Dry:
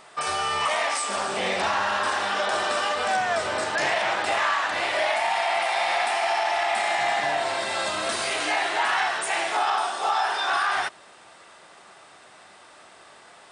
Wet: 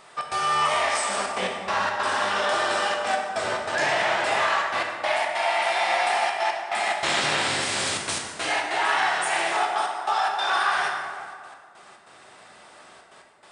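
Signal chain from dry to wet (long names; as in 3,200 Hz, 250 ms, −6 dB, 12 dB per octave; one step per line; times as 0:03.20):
0:06.94–0:08.32: ceiling on every frequency bin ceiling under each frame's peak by 23 dB
gate pattern "xx.xxxxxxxxx.x.." 143 BPM −60 dB
dense smooth reverb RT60 2 s, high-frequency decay 0.55×, DRR 0.5 dB
level −1.5 dB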